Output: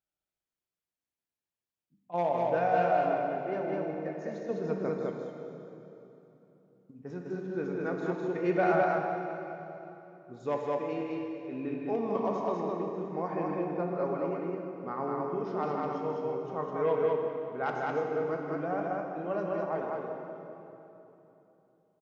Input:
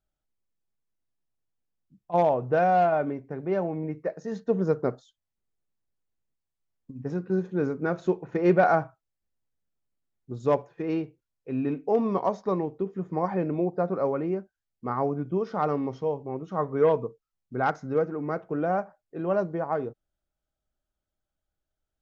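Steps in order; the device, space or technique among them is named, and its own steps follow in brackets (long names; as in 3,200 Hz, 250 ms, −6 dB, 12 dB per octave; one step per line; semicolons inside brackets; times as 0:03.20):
stadium PA (high-pass filter 200 Hz 6 dB per octave; parametric band 2,500 Hz +3.5 dB 0.92 octaves; loudspeakers that aren't time-aligned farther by 54 metres −10 dB, 70 metres −2 dB; convolution reverb RT60 3.2 s, pre-delay 11 ms, DRR 2.5 dB)
level −8 dB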